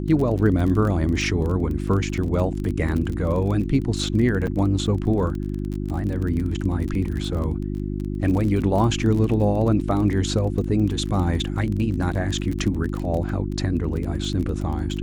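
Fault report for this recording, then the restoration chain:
surface crackle 26 per second −27 dBFS
mains hum 50 Hz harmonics 7 −27 dBFS
0:04.47–0:04.48: drop-out 6.3 ms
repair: click removal
hum removal 50 Hz, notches 7
repair the gap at 0:04.47, 6.3 ms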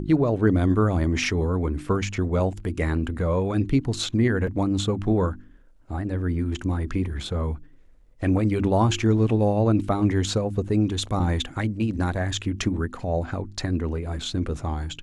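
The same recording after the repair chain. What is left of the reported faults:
none of them is left

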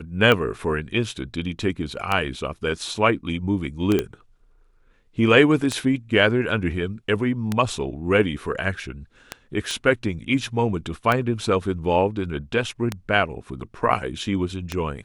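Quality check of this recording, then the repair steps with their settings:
scratch tick 33 1/3 rpm −8 dBFS
0:03.99: click −9 dBFS
0:09.71: click −15 dBFS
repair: click removal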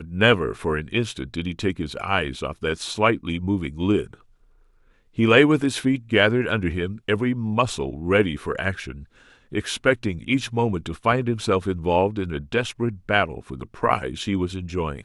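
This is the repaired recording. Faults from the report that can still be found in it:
none of them is left

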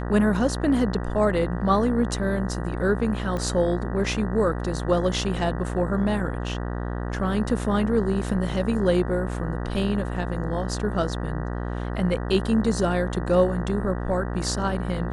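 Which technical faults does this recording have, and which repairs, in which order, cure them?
mains buzz 60 Hz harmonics 32 −29 dBFS
0:03.37: click −18 dBFS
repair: click removal
hum removal 60 Hz, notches 32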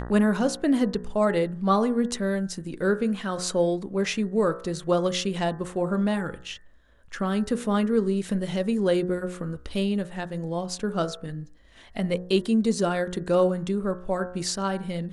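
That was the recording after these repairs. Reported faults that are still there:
none of them is left

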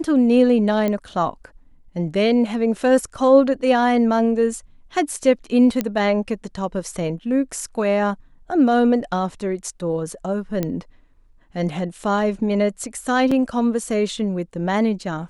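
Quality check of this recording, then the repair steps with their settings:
0:00.88: click −11 dBFS
0:05.81: click −8 dBFS
0:10.63: click −10 dBFS
0:13.31: drop-out 4.7 ms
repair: click removal
repair the gap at 0:13.31, 4.7 ms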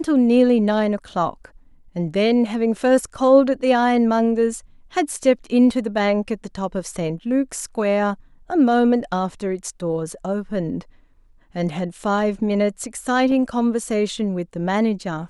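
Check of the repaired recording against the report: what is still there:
none of them is left

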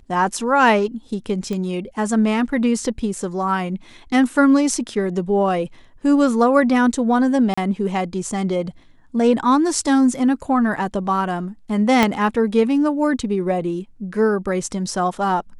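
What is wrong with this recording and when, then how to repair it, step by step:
0:01.53: click −15 dBFS
0:07.54–0:07.58: drop-out 35 ms
0:12.03: click −2 dBFS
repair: click removal
repair the gap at 0:07.54, 35 ms

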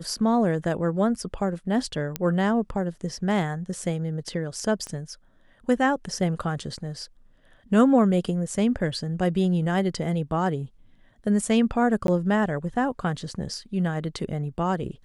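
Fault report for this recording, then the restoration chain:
0:02.16: click −10 dBFS
0:04.87: click −23 dBFS
0:12.07–0:12.08: drop-out 12 ms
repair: click removal
repair the gap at 0:12.07, 12 ms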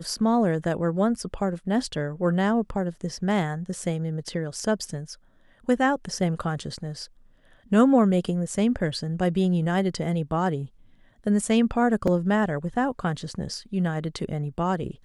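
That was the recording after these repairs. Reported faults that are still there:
0:04.87: click

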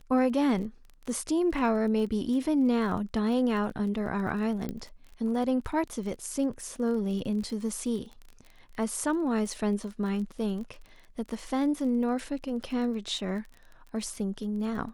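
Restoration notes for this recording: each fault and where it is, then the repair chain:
surface crackle 27 per second −37 dBFS
0:04.69: click −21 dBFS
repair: click removal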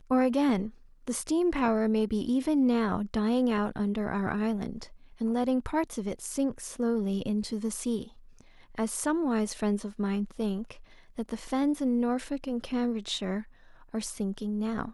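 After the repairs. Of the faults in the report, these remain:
none of them is left

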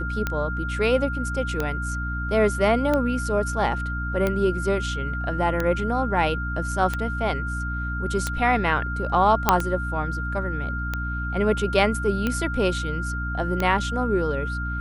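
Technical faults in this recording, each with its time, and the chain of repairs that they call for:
mains hum 60 Hz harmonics 5 −29 dBFS
scratch tick 45 rpm −11 dBFS
whistle 1,400 Hz −30 dBFS
0:09.49: click −1 dBFS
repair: click removal
notch filter 1,400 Hz, Q 30
hum removal 60 Hz, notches 5

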